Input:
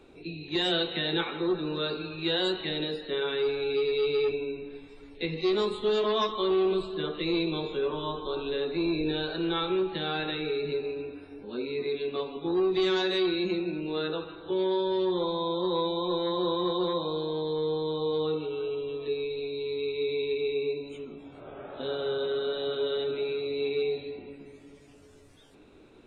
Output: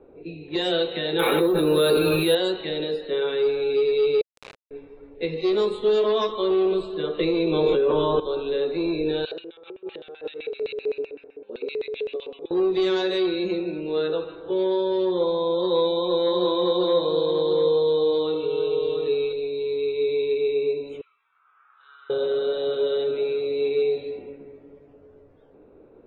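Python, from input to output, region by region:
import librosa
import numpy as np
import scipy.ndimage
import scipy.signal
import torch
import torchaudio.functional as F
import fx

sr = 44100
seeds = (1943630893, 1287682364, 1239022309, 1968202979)

y = fx.chain(x, sr, fx.resample_bad(factor=3, down='none', up='hold'),
    fx.env_flatten(amount_pct=100), at=(1.19, 2.35))
y = fx.chain(y, sr, fx.highpass(hz=900.0, slope=24),
    fx.over_compress(threshold_db=-49.0, ratio=-1.0),
    fx.quant_companded(bits=2), at=(4.21, 4.71))
y = fx.chain(y, sr, fx.lowpass(hz=3100.0, slope=6),
    fx.env_flatten(amount_pct=100), at=(7.19, 8.2))
y = fx.chain(y, sr, fx.high_shelf(hz=2400.0, db=11.5),
    fx.over_compress(threshold_db=-31.0, ratio=-0.5),
    fx.filter_lfo_bandpass(shape='square', hz=7.8, low_hz=440.0, high_hz=2800.0, q=2.6), at=(9.25, 12.51))
y = fx.chain(y, sr, fx.high_shelf(hz=3600.0, db=8.5),
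    fx.echo_single(ms=699, db=-6.5), at=(15.58, 19.33))
y = fx.chain(y, sr, fx.ellip_highpass(hz=1200.0, order=4, stop_db=50),
    fx.high_shelf(hz=3000.0, db=-7.5), at=(21.01, 22.1))
y = fx.peak_eq(y, sr, hz=500.0, db=9.5, octaves=0.71)
y = fx.env_lowpass(y, sr, base_hz=1100.0, full_db=-23.0)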